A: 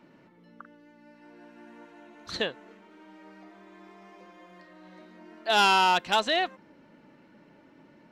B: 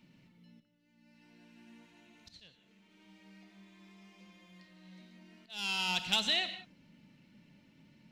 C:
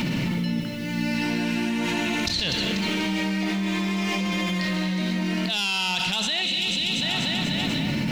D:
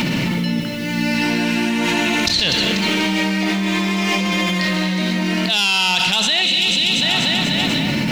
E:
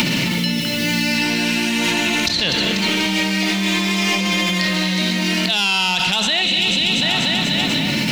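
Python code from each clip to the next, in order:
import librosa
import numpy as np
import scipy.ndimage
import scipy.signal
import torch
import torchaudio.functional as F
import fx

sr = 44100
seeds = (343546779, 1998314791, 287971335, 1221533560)

y1 = fx.auto_swell(x, sr, attack_ms=641.0)
y1 = fx.band_shelf(y1, sr, hz=710.0, db=-15.0, octaves=2.9)
y1 = fx.rev_gated(y1, sr, seeds[0], gate_ms=210, shape='flat', drr_db=9.5)
y2 = fx.echo_feedback(y1, sr, ms=244, feedback_pct=56, wet_db=-13.5)
y2 = fx.spec_box(y2, sr, start_s=6.41, length_s=0.61, low_hz=570.0, high_hz=2100.0, gain_db=-11)
y2 = fx.env_flatten(y2, sr, amount_pct=100)
y2 = y2 * 10.0 ** (1.5 / 20.0)
y3 = fx.low_shelf(y2, sr, hz=190.0, db=-6.5)
y3 = y3 * 10.0 ** (8.5 / 20.0)
y4 = fx.band_squash(y3, sr, depth_pct=100)
y4 = y4 * 10.0 ** (-2.0 / 20.0)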